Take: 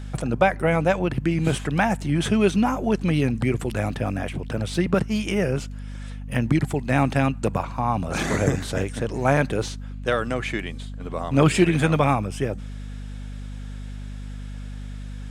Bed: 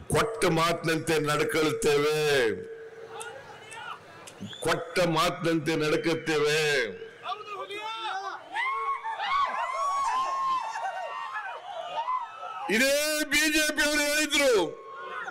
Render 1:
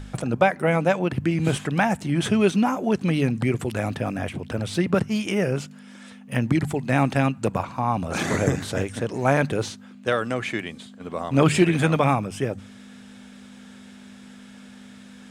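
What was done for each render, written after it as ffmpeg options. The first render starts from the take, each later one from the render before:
ffmpeg -i in.wav -af "bandreject=frequency=50:width_type=h:width=4,bandreject=frequency=100:width_type=h:width=4,bandreject=frequency=150:width_type=h:width=4" out.wav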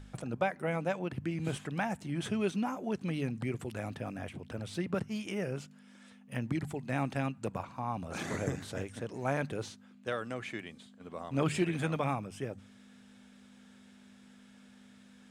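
ffmpeg -i in.wav -af "volume=-12.5dB" out.wav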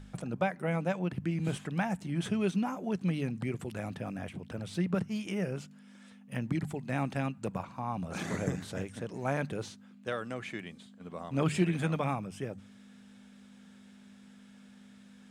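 ffmpeg -i in.wav -af "equalizer=frequency=180:width_type=o:width=0.3:gain=7.5" out.wav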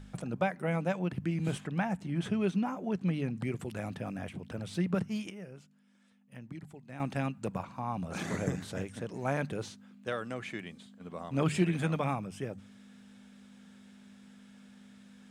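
ffmpeg -i in.wav -filter_complex "[0:a]asettb=1/sr,asplit=3[link_01][link_02][link_03];[link_01]atrim=end=1.604[link_04];[link_02]atrim=start=1.6:end=3.37,asetpts=PTS-STARTPTS,afade=type=in:duration=0.004:curve=qsin,afade=type=out:start_time=1.766:duration=0.004:curve=qsin,highshelf=frequency=4600:gain=-8[link_05];[link_03]atrim=start=3.366[link_06];[link_04][link_05]acrossfade=duration=0.004:curve1=hsin:curve2=qsin[link_07];[link_07][link_06]acrossfade=duration=0.004:curve1=qsin:curve2=hsin,asplit=3[link_08][link_09][link_10];[link_08]atrim=end=5.3,asetpts=PTS-STARTPTS,afade=type=out:start_time=5.14:duration=0.16:curve=log:silence=0.237137[link_11];[link_09]atrim=start=5.3:end=7,asetpts=PTS-STARTPTS,volume=-12.5dB[link_12];[link_10]atrim=start=7,asetpts=PTS-STARTPTS,afade=type=in:duration=0.16:curve=log:silence=0.237137[link_13];[link_11][link_12][link_13]concat=n=3:v=0:a=1" out.wav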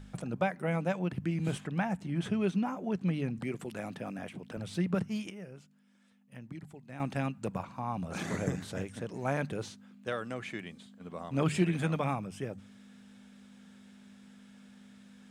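ffmpeg -i in.wav -filter_complex "[0:a]asettb=1/sr,asplit=3[link_01][link_02][link_03];[link_01]atrim=end=3.394[link_04];[link_02]atrim=start=3.39:end=4.57,asetpts=PTS-STARTPTS,afade=type=in:duration=0.004:curve=qsin,afade=type=out:start_time=1.176:duration=0.004:curve=qsin,highpass=160[link_05];[link_03]atrim=start=4.566[link_06];[link_04][link_05]acrossfade=duration=0.004:curve1=hsin:curve2=qsin[link_07];[link_07][link_06]acrossfade=duration=0.004:curve1=qsin:curve2=hsin" out.wav

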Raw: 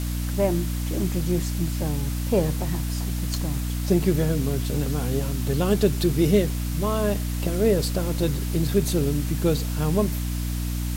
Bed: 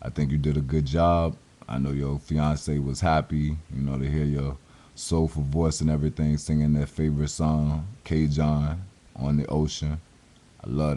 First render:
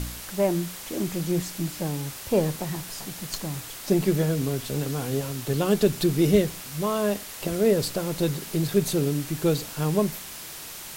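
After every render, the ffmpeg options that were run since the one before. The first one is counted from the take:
ffmpeg -i in.wav -af "bandreject=frequency=60:width_type=h:width=4,bandreject=frequency=120:width_type=h:width=4,bandreject=frequency=180:width_type=h:width=4,bandreject=frequency=240:width_type=h:width=4,bandreject=frequency=300:width_type=h:width=4" out.wav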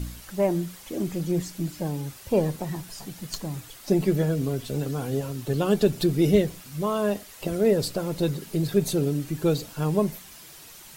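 ffmpeg -i in.wav -af "afftdn=noise_reduction=9:noise_floor=-39" out.wav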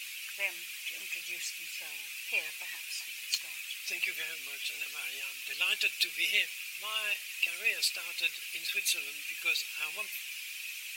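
ffmpeg -i in.wav -af "highpass=frequency=2500:width_type=q:width=8.6" out.wav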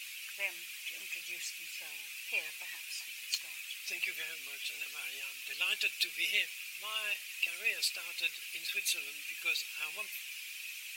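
ffmpeg -i in.wav -af "volume=-3dB" out.wav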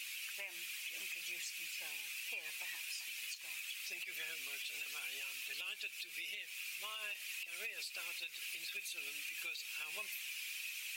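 ffmpeg -i in.wav -af "acompressor=threshold=-36dB:ratio=6,alimiter=level_in=10dB:limit=-24dB:level=0:latency=1:release=99,volume=-10dB" out.wav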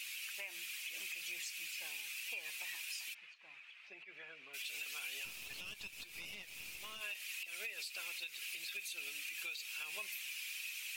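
ffmpeg -i in.wav -filter_complex "[0:a]asplit=3[link_01][link_02][link_03];[link_01]afade=type=out:start_time=3.13:duration=0.02[link_04];[link_02]lowpass=1500,afade=type=in:start_time=3.13:duration=0.02,afade=type=out:start_time=4.53:duration=0.02[link_05];[link_03]afade=type=in:start_time=4.53:duration=0.02[link_06];[link_04][link_05][link_06]amix=inputs=3:normalize=0,asettb=1/sr,asplit=3[link_07][link_08][link_09];[link_07]atrim=end=5.254[link_10];[link_08]atrim=start=5.25:end=7.01,asetpts=PTS-STARTPTS,afade=type=in:duration=0.004:curve=qsin,afade=type=out:start_time=1.756:duration=0.004:curve=qsin,aeval=exprs='(tanh(112*val(0)+0.65)-tanh(0.65))/112':channel_layout=same[link_11];[link_09]atrim=start=7.006[link_12];[link_10][link_11]acrossfade=duration=0.004:curve1=hsin:curve2=qsin[link_13];[link_13][link_12]acrossfade=duration=0.004:curve1=qsin:curve2=hsin" out.wav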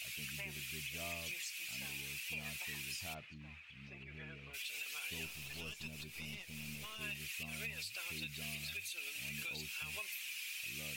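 ffmpeg -i in.wav -i bed.wav -filter_complex "[1:a]volume=-29dB[link_01];[0:a][link_01]amix=inputs=2:normalize=0" out.wav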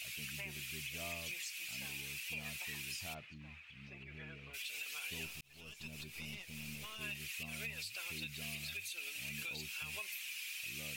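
ffmpeg -i in.wav -filter_complex "[0:a]asplit=2[link_01][link_02];[link_01]atrim=end=5.41,asetpts=PTS-STARTPTS,afade=type=out:start_time=5.406:duration=0.004:curve=hsin[link_03];[link_02]atrim=start=5.41,asetpts=PTS-STARTPTS,afade=type=in:duration=0.54[link_04];[link_03][link_04]concat=n=2:v=0:a=1" out.wav

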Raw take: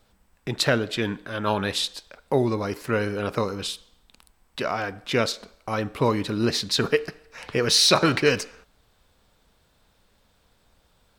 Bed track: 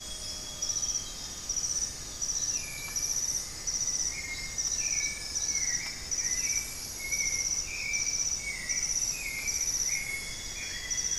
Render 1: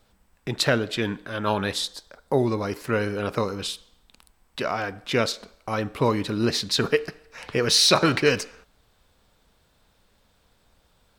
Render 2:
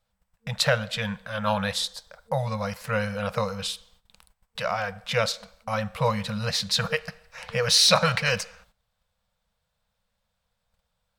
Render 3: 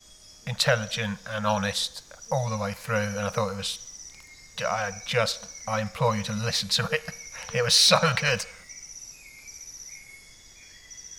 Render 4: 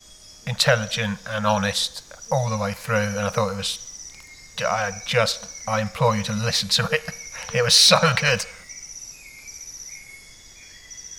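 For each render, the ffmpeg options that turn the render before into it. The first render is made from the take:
ffmpeg -i in.wav -filter_complex "[0:a]asettb=1/sr,asplit=3[link_01][link_02][link_03];[link_01]atrim=end=1.734[link_04];[link_02]atrim=start=1.73:end=2.39,asetpts=PTS-STARTPTS,afade=type=in:duration=0.004:curve=qsin,afade=type=out:start_time=0.656:duration=0.004:curve=qsin,equalizer=frequency=2600:width_type=o:width=0.52:gain=-11[link_05];[link_03]atrim=start=2.386[link_06];[link_04][link_05]acrossfade=duration=0.004:curve1=hsin:curve2=qsin[link_07];[link_07][link_06]acrossfade=duration=0.004:curve1=qsin:curve2=hsin" out.wav
ffmpeg -i in.wav -af "agate=range=-14dB:threshold=-57dB:ratio=16:detection=peak,afftfilt=real='re*(1-between(b*sr/4096,220,460))':imag='im*(1-between(b*sr/4096,220,460))':win_size=4096:overlap=0.75" out.wav
ffmpeg -i in.wav -i bed.wav -filter_complex "[1:a]volume=-12.5dB[link_01];[0:a][link_01]amix=inputs=2:normalize=0" out.wav
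ffmpeg -i in.wav -af "volume=4.5dB,alimiter=limit=-3dB:level=0:latency=1" out.wav

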